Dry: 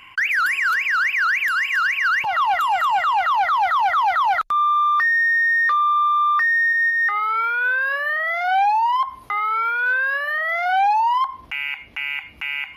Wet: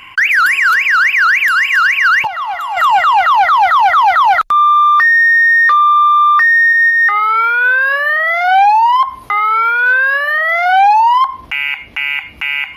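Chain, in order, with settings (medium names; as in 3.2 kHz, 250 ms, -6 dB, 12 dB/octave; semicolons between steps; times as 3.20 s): 2.27–2.77 s: feedback comb 140 Hz, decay 1.7 s, mix 70%; trim +9 dB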